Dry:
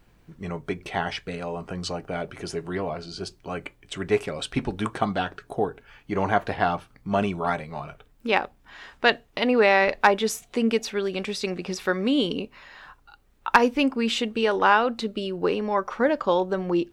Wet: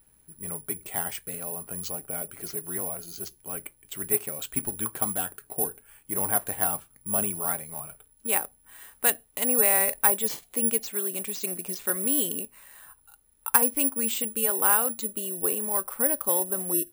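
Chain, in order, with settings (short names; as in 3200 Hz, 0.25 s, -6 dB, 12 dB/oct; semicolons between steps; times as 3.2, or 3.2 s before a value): careless resampling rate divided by 4×, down none, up zero stuff; gain -9 dB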